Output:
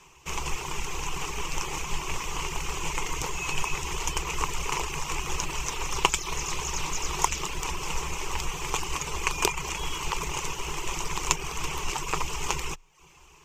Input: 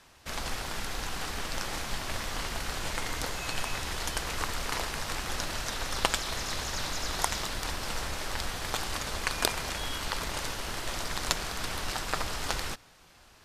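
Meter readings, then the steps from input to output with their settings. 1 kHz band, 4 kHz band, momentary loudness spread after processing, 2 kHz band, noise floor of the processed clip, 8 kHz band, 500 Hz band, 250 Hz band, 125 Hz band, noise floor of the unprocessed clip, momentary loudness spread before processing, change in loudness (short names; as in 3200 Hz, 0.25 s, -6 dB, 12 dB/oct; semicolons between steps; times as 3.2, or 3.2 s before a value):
+4.0 dB, 0.0 dB, 5 LU, +1.5 dB, -54 dBFS, +5.0 dB, +1.5 dB, +1.5 dB, +3.0 dB, -57 dBFS, 5 LU, +2.5 dB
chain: reverb removal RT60 0.55 s; ripple EQ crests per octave 0.73, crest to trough 14 dB; gain +1.5 dB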